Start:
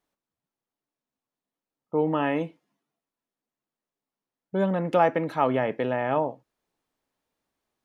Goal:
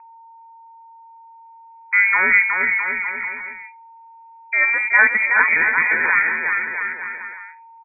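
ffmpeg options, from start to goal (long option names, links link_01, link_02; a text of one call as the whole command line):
ffmpeg -i in.wav -filter_complex "[0:a]dynaudnorm=framelen=600:gausssize=5:maxgain=10.5dB,asplit=2[link_01][link_02];[link_02]aecho=0:1:370|666|902.8|1092|1244:0.631|0.398|0.251|0.158|0.1[link_03];[link_01][link_03]amix=inputs=2:normalize=0,aeval=exprs='val(0)+0.00794*sin(2*PI*1300*n/s)':channel_layout=same,asetrate=57191,aresample=44100,atempo=0.771105,lowpass=frequency=2200:width_type=q:width=0.5098,lowpass=frequency=2200:width_type=q:width=0.6013,lowpass=frequency=2200:width_type=q:width=0.9,lowpass=frequency=2200:width_type=q:width=2.563,afreqshift=-2600" out.wav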